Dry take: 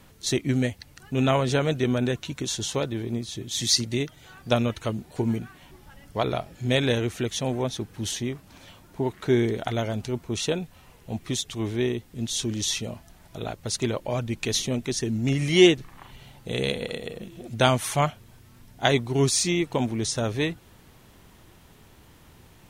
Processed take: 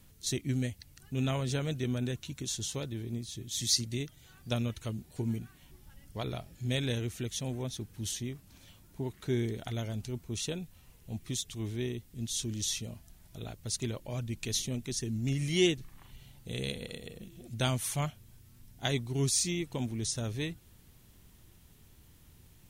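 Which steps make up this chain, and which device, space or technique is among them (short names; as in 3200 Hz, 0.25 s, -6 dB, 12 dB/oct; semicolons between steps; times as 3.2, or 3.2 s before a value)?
smiley-face EQ (low shelf 120 Hz +5 dB; bell 840 Hz -8 dB 2.8 oct; high shelf 8200 Hz +7 dB); gain -7 dB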